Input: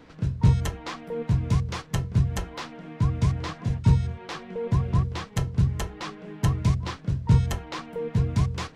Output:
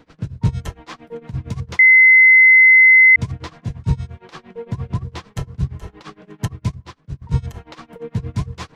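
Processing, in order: band-passed feedback delay 508 ms, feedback 81%, band-pass 1.3 kHz, level -21.5 dB; tremolo 8.7 Hz, depth 92%; 1.79–3.16 s: bleep 2.05 kHz -8 dBFS; 6.48–7.22 s: upward expansion 1.5:1, over -43 dBFS; trim +2.5 dB

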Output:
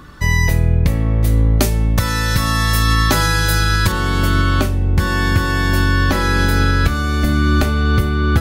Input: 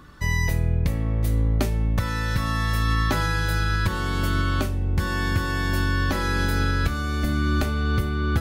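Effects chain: 1.57–3.92 s: tone controls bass -1 dB, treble +8 dB; trim +8 dB

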